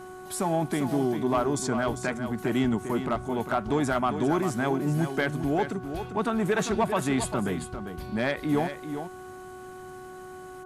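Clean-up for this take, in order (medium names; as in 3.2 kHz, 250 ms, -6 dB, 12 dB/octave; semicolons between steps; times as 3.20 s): de-hum 369.8 Hz, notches 4; inverse comb 398 ms -9 dB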